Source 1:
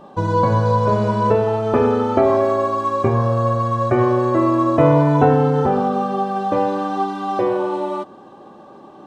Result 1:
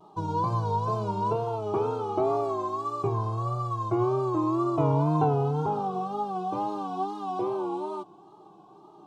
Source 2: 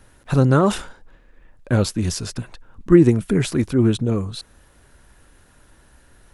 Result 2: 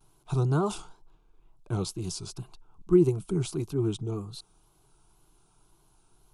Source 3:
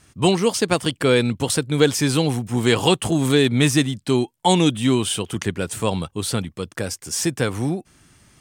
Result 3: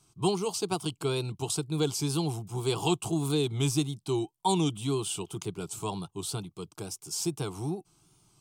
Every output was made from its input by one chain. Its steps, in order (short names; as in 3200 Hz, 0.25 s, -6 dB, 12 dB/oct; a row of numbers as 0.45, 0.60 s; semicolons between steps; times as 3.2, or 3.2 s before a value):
wow and flutter 99 cents; fixed phaser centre 360 Hz, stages 8; gain -8 dB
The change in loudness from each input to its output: -10.5, -9.5, -10.5 LU